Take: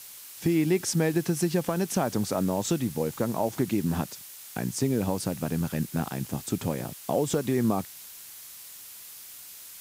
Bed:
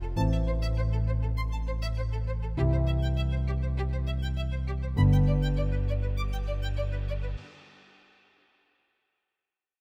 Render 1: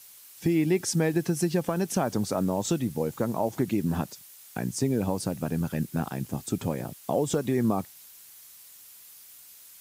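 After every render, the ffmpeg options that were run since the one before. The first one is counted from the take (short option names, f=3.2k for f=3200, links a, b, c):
-af "afftdn=nr=7:nf=-45"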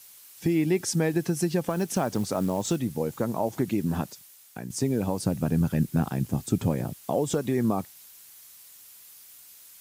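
-filter_complex "[0:a]asettb=1/sr,asplit=3[a][b][c];[a]atrim=end=1.704[d];[b]atrim=start=1.7:end=2.77,asetpts=PTS-STARTPTS,afade=t=in:d=0.004:c=qsin,afade=t=out:st=1.066:d=0.004:c=qsin,acrusher=bits=6:mode=log:mix=0:aa=0.000001[e];[c]atrim=start=2.766[f];[d][e]acrossfade=d=0.004:c1=hsin:c2=qsin[g];[g][f]acrossfade=d=0.004:c1=qsin:c2=hsin,asettb=1/sr,asplit=3[h][i][j];[h]atrim=end=5.264[k];[i]atrim=start=5.26:end=7.05,asetpts=PTS-STARTPTS,afade=t=in:d=0.004:c=qsin,afade=t=out:st=1.786:d=0.004:c=qsin,lowshelf=f=250:g=7.5[l];[j]atrim=start=7.046[m];[k][l]acrossfade=d=0.004:c1=hsin:c2=qsin[n];[n][m]acrossfade=d=0.004:c1=qsin:c2=hsin,asplit=2[o][p];[o]atrim=end=4.7,asetpts=PTS-STARTPTS,afade=t=out:st=4.06:d=0.64:silence=0.398107[q];[p]atrim=start=4.7,asetpts=PTS-STARTPTS,afade=t=in:d=0.004:c=hsin:silence=0.398107[r];[q][r]concat=n=2:v=0:a=1"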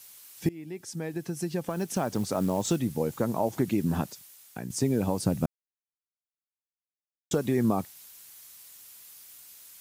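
-filter_complex "[0:a]asplit=4[a][b][c][d];[a]atrim=end=0.49,asetpts=PTS-STARTPTS,afade=t=out:st=0.486:d=0.004:c=hsin:silence=0.0794328[e];[b]atrim=start=0.49:end=5.46,asetpts=PTS-STARTPTS,afade=t=in:d=2.09:silence=0.0794328,afade=t=out:st=4.966:d=0.004:c=hsin[f];[c]atrim=start=5.46:end=7.31,asetpts=PTS-STARTPTS,volume=0[g];[d]atrim=start=7.31,asetpts=PTS-STARTPTS,afade=t=in:d=0.004:c=hsin[h];[e][f][g][h]concat=n=4:v=0:a=1"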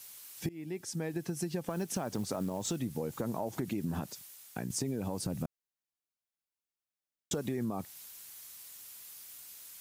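-af "alimiter=limit=-19dB:level=0:latency=1:release=28,acompressor=threshold=-31dB:ratio=6"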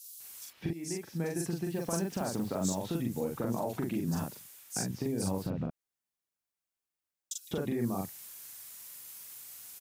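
-filter_complex "[0:a]asplit=2[a][b];[b]adelay=42,volume=-2dB[c];[a][c]amix=inputs=2:normalize=0,acrossover=split=3800[d][e];[d]adelay=200[f];[f][e]amix=inputs=2:normalize=0"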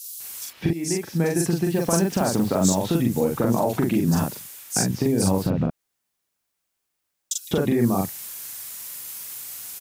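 -af "volume=12dB"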